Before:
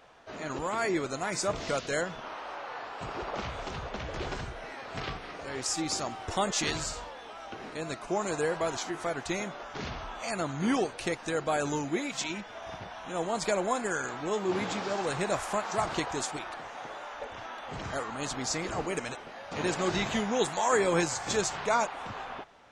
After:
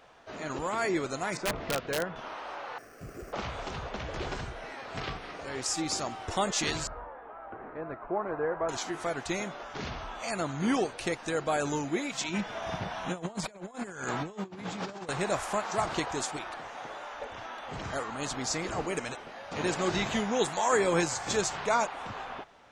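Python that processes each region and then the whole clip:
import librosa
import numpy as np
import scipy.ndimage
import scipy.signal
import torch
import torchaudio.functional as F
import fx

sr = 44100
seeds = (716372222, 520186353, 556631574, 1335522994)

y = fx.chain(x, sr, fx.lowpass(hz=2100.0, slope=12),
    fx.overflow_wrap(gain_db=22.5), at=(1.37, 2.16))
y = fx.chain(y, sr, fx.spacing_loss(db_at_10k=44),
    fx.fixed_phaser(hz=2200.0, stages=4),
    fx.resample_bad(factor=6, down='none', up='hold'), at=(2.78, 3.33))
y = fx.chain(y, sr, fx.lowpass(hz=1600.0, slope=24),
    fx.peak_eq(hz=180.0, db=-6.0, octaves=1.3), at=(6.87, 8.69))
y = fx.chain(y, sr, fx.over_compress(threshold_db=-37.0, ratio=-0.5),
    fx.peak_eq(hz=160.0, db=7.0, octaves=0.87), at=(12.28, 15.09))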